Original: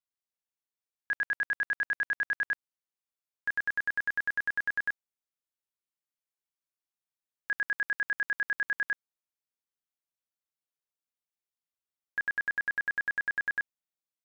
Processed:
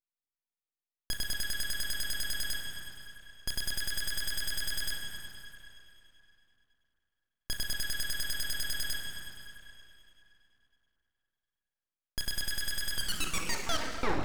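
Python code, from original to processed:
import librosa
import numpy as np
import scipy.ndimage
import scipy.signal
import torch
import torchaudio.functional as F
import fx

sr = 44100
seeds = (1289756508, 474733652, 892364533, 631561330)

y = fx.tape_stop_end(x, sr, length_s=1.29)
y = fx.high_shelf(y, sr, hz=2900.0, db=-9.5)
y = fx.cheby_harmonics(y, sr, harmonics=(8,), levels_db=(-7,), full_scale_db=-23.5)
y = fx.rev_plate(y, sr, seeds[0], rt60_s=3.1, hf_ratio=0.6, predelay_ms=0, drr_db=2.0)
y = np.abs(y)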